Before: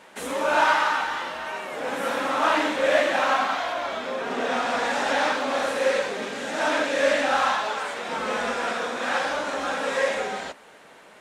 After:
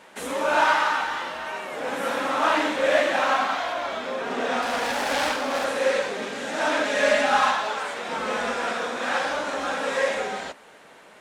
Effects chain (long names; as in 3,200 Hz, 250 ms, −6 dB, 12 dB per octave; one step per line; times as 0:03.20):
0:04.62–0:05.65: phase distortion by the signal itself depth 0.21 ms
0:06.85–0:07.51: comb filter 4.8 ms, depth 75%